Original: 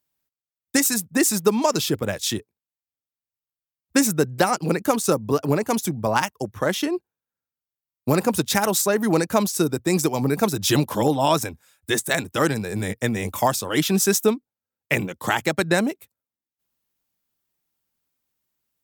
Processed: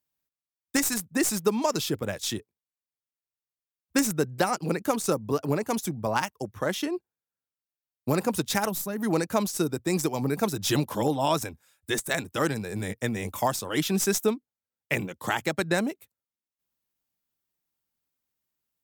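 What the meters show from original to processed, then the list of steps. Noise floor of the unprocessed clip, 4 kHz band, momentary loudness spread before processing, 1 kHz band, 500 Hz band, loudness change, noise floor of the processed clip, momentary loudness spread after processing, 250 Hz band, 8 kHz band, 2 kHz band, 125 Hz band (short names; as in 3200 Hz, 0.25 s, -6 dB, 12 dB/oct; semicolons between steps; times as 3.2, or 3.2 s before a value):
under -85 dBFS, -5.5 dB, 7 LU, -5.5 dB, -5.5 dB, -5.5 dB, under -85 dBFS, 6 LU, -5.5 dB, -6.5 dB, -5.5 dB, -5.5 dB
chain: tracing distortion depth 0.02 ms; spectral gain 8.69–8.99, 300–10000 Hz -9 dB; gain -5.5 dB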